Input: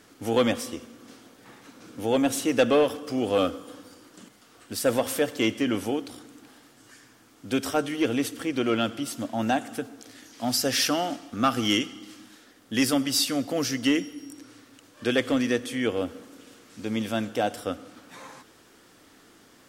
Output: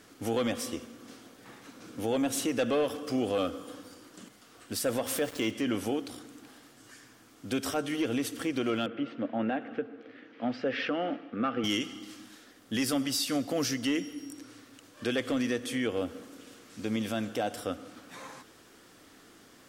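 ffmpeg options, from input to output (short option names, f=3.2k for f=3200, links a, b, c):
-filter_complex "[0:a]asettb=1/sr,asplit=3[a][b][c];[a]atrim=end=5.064[d];[b]atrim=start=5.06:end=5.51,asetpts=PTS-STARTPTS,afade=t=in:d=0.004:c=qsin,afade=t=out:st=0.446:d=0.004:c=qsin,aeval=exprs='val(0)*gte(abs(val(0)),0.0119)':c=same[e];[c]atrim=start=5.506[f];[d][e]acrossfade=d=0.004:c1=hsin:c2=qsin[g];[g][f]acrossfade=d=0.004:c1=qsin:c2=hsin,asettb=1/sr,asplit=3[h][i][j];[h]atrim=end=8.864[k];[i]atrim=start=8.86:end=11.64,asetpts=PTS-STARTPTS,afade=t=in:d=0.004:c=qsin,afade=t=out:st=2.776:d=0.004:c=qsin,highpass=170,equalizer=f=480:t=q:w=4:g=7,equalizer=f=700:t=q:w=4:g=-4,equalizer=f=990:t=q:w=4:g=-5,lowpass=f=2.6k:w=0.5412,lowpass=f=2.6k:w=1.3066[l];[j]atrim=start=11.636[m];[k][l]acrossfade=d=0.004:c1=hsin:c2=qsin[n];[n][m]acrossfade=d=0.004:c1=qsin:c2=hsin,bandreject=f=890:w=25,acontrast=72,alimiter=limit=-13.5dB:level=0:latency=1:release=143,volume=-7.5dB"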